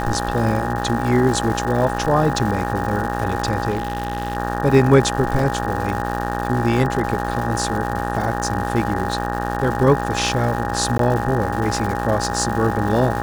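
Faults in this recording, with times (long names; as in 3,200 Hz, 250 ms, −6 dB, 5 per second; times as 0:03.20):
mains buzz 60 Hz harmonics 31 −25 dBFS
surface crackle 330 per second −26 dBFS
whistle 820 Hz −26 dBFS
0:03.69–0:04.37: clipping −17.5 dBFS
0:05.39: drop-out 2.8 ms
0:10.98–0:10.99: drop-out 13 ms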